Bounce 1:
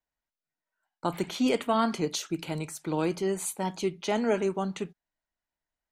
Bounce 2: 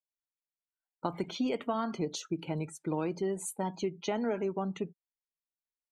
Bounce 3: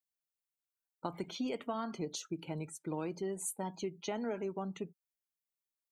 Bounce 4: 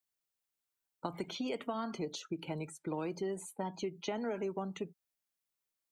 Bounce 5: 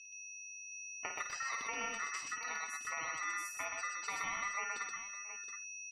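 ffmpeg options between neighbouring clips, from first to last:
-af "afftdn=nr=21:nf=-41,acompressor=threshold=-28dB:ratio=6,adynamicequalizer=threshold=0.00282:dfrequency=2000:dqfactor=0.7:tfrequency=2000:tqfactor=0.7:attack=5:release=100:ratio=0.375:range=2.5:mode=cutabove:tftype=highshelf"
-af "crystalizer=i=1:c=0,volume=-5.5dB"
-filter_complex "[0:a]acrossover=split=350|4000[a][b][c];[a]acompressor=threshold=-44dB:ratio=4[d];[b]acompressor=threshold=-39dB:ratio=4[e];[c]acompressor=threshold=-55dB:ratio=4[f];[d][e][f]amix=inputs=3:normalize=0,volume=3.5dB"
-af "aeval=exprs='val(0)+0.00501*sin(2*PI*4200*n/s)':c=same,aeval=exprs='val(0)*sin(2*PI*1600*n/s)':c=same,aecho=1:1:54|125|675|720:0.422|0.708|0.119|0.299,volume=-2dB"

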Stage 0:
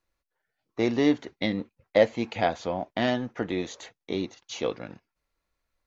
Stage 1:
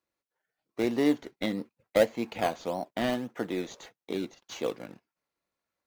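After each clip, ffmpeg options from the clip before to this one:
-filter_complex "[0:a]highpass=160,asplit=2[a][b];[b]acrusher=samples=17:mix=1:aa=0.000001:lfo=1:lforange=17:lforate=1.7,volume=-8dB[c];[a][c]amix=inputs=2:normalize=0,volume=-5dB"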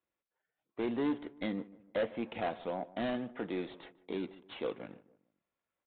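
-filter_complex "[0:a]aresample=8000,asoftclip=type=tanh:threshold=-24dB,aresample=44100,asplit=2[a][b];[b]adelay=150,lowpass=f=1.3k:p=1,volume=-18dB,asplit=2[c][d];[d]adelay=150,lowpass=f=1.3k:p=1,volume=0.42,asplit=2[e][f];[f]adelay=150,lowpass=f=1.3k:p=1,volume=0.42[g];[a][c][e][g]amix=inputs=4:normalize=0,volume=-3dB"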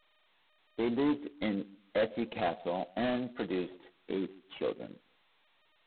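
-af "afftdn=nr=15:nf=-44,volume=3dB" -ar 8000 -c:a adpcm_g726 -b:a 16k

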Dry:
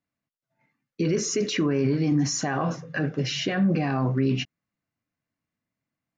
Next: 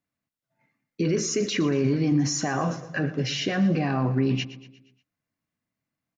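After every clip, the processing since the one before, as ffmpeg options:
-af "aecho=1:1:118|236|354|472|590:0.168|0.0839|0.042|0.021|0.0105"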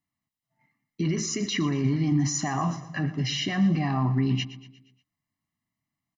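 -af "aecho=1:1:1:0.84,volume=-3.5dB"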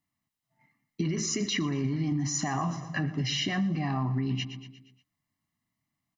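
-af "acompressor=threshold=-28dB:ratio=6,volume=2dB"

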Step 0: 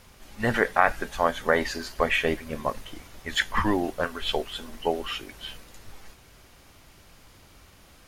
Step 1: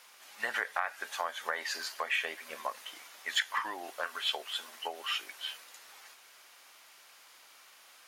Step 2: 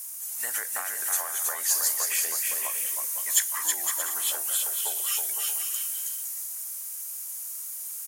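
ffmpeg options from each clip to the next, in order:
-af "acompressor=threshold=-25dB:ratio=12,highpass=920"
-af "aexciter=amount=13:drive=9.5:freq=6.5k,equalizer=f=4.2k:t=o:w=0.32:g=9.5,aecho=1:1:320|512|627.2|696.3|737.8:0.631|0.398|0.251|0.158|0.1,volume=-4.5dB"

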